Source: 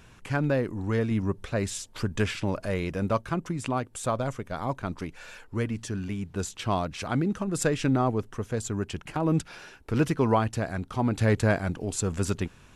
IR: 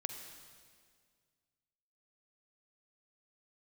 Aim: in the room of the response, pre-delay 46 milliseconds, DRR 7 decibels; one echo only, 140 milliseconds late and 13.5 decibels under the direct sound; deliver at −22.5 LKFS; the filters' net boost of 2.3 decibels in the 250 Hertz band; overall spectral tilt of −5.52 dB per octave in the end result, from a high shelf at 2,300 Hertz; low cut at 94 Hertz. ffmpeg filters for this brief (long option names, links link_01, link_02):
-filter_complex "[0:a]highpass=94,equalizer=frequency=250:width_type=o:gain=3,highshelf=frequency=2300:gain=3.5,aecho=1:1:140:0.211,asplit=2[link_01][link_02];[1:a]atrim=start_sample=2205,adelay=46[link_03];[link_02][link_03]afir=irnorm=-1:irlink=0,volume=-6.5dB[link_04];[link_01][link_04]amix=inputs=2:normalize=0,volume=4dB"